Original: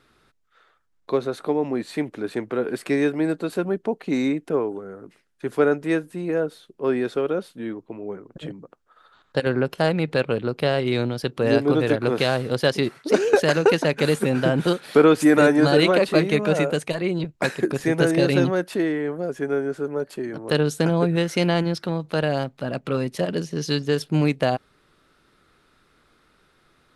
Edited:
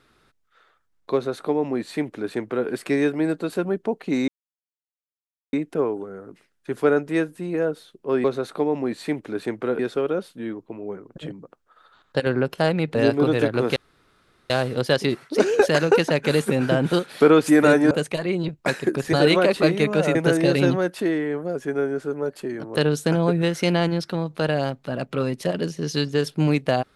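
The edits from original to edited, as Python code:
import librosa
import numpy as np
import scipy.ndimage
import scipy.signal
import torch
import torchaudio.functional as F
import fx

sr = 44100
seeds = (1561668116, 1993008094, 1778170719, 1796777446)

y = fx.edit(x, sr, fx.duplicate(start_s=1.13, length_s=1.55, to_s=6.99),
    fx.insert_silence(at_s=4.28, length_s=1.25),
    fx.cut(start_s=10.15, length_s=1.28),
    fx.insert_room_tone(at_s=12.24, length_s=0.74),
    fx.move(start_s=15.65, length_s=1.02, to_s=17.89), tone=tone)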